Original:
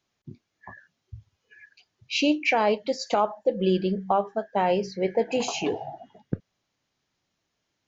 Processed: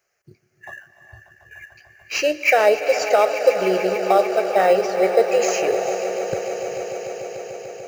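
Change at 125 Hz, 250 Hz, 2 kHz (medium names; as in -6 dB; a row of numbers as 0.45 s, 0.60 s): no reading, -2.0 dB, +8.5 dB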